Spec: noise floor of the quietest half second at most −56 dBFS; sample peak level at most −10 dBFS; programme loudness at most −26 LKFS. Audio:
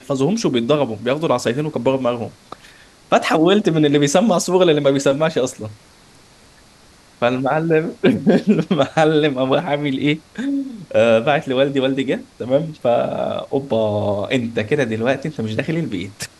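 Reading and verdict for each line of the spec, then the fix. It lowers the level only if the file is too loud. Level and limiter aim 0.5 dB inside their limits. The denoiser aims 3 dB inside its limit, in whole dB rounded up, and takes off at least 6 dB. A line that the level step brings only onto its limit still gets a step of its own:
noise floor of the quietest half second −48 dBFS: out of spec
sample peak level −3.0 dBFS: out of spec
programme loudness −18.0 LKFS: out of spec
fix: level −8.5 dB

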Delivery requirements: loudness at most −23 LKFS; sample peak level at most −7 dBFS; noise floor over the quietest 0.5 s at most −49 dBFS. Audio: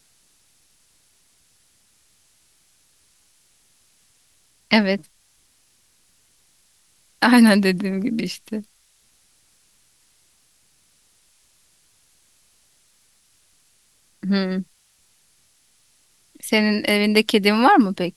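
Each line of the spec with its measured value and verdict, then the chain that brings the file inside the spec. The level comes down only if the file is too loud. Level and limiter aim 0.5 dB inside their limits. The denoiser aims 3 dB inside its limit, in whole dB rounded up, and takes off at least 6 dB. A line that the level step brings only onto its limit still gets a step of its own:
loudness −18.5 LKFS: out of spec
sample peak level −1.5 dBFS: out of spec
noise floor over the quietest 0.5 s −61 dBFS: in spec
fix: level −5 dB
brickwall limiter −7.5 dBFS

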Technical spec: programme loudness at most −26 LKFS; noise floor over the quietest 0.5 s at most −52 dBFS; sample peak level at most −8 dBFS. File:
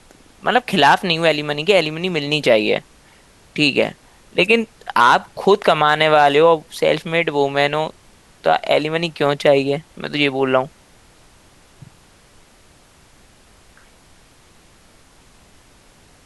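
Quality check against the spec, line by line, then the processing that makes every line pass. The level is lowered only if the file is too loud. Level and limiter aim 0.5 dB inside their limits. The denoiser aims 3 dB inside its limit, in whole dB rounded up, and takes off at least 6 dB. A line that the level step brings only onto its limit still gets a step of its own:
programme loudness −17.0 LKFS: out of spec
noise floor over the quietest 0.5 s −50 dBFS: out of spec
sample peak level −1.5 dBFS: out of spec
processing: level −9.5 dB

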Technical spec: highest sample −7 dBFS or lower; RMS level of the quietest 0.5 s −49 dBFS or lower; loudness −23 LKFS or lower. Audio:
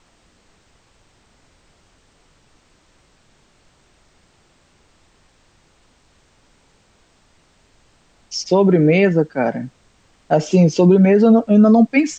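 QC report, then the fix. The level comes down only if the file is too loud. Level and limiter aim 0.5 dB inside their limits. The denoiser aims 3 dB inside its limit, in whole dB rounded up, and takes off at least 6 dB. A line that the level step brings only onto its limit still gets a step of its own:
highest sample −4.5 dBFS: out of spec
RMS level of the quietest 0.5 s −57 dBFS: in spec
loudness −14.5 LKFS: out of spec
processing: level −9 dB

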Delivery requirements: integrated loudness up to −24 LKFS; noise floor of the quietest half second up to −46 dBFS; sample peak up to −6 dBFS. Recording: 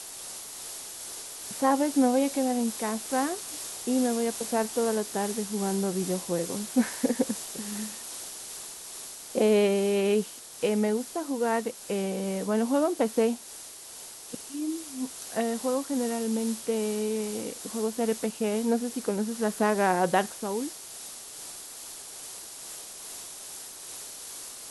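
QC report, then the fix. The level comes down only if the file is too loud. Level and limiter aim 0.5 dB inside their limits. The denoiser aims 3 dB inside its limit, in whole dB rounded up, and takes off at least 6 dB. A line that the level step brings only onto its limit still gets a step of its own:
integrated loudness −29.5 LKFS: in spec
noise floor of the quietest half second −44 dBFS: out of spec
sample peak −11.0 dBFS: in spec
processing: broadband denoise 6 dB, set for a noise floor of −44 dBFS

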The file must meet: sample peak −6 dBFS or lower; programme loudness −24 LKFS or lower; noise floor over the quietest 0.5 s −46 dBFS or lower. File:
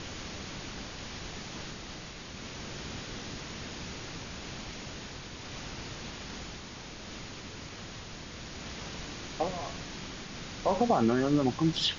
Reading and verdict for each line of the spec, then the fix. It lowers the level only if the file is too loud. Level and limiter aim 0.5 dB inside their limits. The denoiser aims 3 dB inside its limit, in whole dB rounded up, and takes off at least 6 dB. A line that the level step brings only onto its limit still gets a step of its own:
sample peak −14.5 dBFS: in spec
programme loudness −35.5 LKFS: in spec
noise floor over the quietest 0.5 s −44 dBFS: out of spec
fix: broadband denoise 6 dB, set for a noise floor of −44 dBFS

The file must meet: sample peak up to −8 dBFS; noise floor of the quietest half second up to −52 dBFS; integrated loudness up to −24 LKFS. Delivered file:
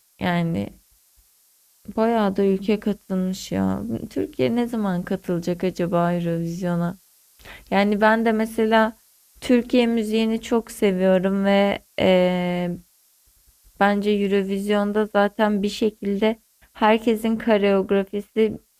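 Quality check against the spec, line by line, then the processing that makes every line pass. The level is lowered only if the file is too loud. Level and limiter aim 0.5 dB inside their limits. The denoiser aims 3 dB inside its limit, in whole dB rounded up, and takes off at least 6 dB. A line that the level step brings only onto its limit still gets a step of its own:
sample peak −5.5 dBFS: out of spec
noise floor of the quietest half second −59 dBFS: in spec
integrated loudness −21.5 LKFS: out of spec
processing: level −3 dB

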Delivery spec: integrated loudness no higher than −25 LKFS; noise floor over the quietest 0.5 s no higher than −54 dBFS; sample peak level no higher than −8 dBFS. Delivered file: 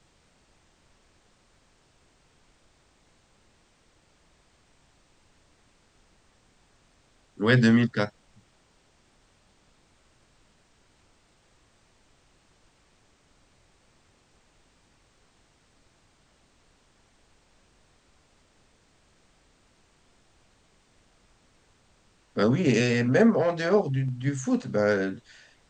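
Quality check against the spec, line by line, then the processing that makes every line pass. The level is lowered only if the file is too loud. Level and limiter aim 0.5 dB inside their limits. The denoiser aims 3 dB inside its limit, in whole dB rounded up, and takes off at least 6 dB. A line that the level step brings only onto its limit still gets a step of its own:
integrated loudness −24.0 LKFS: out of spec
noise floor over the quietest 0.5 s −63 dBFS: in spec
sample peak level −6.5 dBFS: out of spec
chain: level −1.5 dB
brickwall limiter −8.5 dBFS

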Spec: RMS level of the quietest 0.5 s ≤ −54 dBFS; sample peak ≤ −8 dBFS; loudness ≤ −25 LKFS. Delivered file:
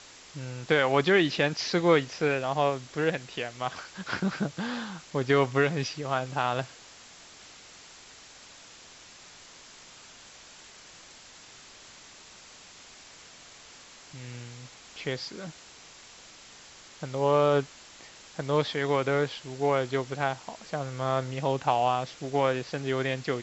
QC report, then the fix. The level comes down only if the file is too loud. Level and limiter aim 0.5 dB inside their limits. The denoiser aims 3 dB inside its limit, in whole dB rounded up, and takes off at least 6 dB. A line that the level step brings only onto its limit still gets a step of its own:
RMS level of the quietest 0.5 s −51 dBFS: out of spec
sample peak −9.5 dBFS: in spec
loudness −28.0 LKFS: in spec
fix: broadband denoise 6 dB, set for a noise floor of −51 dBFS

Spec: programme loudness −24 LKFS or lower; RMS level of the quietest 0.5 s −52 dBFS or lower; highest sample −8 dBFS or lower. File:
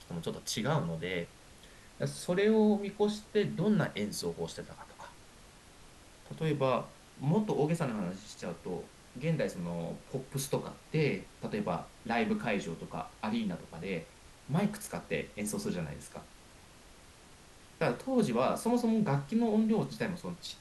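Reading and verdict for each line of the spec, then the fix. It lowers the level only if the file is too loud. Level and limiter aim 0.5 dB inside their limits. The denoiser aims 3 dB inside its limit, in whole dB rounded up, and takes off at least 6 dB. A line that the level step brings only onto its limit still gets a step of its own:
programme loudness −33.5 LKFS: in spec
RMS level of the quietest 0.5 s −56 dBFS: in spec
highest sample −16.0 dBFS: in spec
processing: no processing needed

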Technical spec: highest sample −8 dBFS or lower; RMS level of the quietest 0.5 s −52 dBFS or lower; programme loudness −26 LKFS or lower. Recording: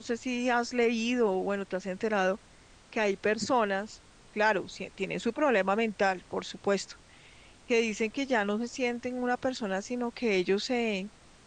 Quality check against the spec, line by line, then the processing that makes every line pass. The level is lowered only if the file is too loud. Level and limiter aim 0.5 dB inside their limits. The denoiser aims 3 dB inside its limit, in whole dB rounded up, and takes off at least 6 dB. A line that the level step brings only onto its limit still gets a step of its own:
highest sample −12.5 dBFS: in spec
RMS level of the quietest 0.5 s −56 dBFS: in spec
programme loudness −30.0 LKFS: in spec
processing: no processing needed

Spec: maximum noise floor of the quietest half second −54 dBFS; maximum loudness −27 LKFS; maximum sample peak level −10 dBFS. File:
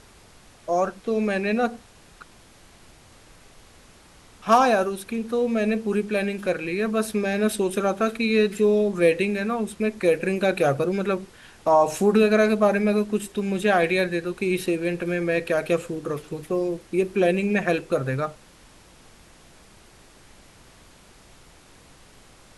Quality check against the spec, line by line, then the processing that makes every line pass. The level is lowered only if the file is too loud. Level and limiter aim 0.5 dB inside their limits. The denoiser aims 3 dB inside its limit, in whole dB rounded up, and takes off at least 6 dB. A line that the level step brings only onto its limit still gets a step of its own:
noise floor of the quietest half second −51 dBFS: out of spec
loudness −23.0 LKFS: out of spec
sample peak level −6.0 dBFS: out of spec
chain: level −4.5 dB

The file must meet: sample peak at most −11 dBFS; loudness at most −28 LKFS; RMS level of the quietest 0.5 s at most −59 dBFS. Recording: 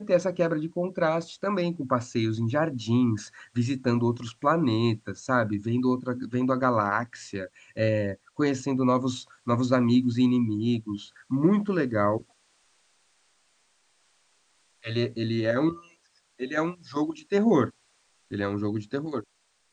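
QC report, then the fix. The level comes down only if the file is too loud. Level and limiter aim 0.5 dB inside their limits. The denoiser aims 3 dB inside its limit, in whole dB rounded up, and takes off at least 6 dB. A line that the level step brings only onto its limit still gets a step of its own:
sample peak −8.5 dBFS: out of spec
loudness −26.5 LKFS: out of spec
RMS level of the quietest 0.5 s −67 dBFS: in spec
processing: level −2 dB
brickwall limiter −11.5 dBFS

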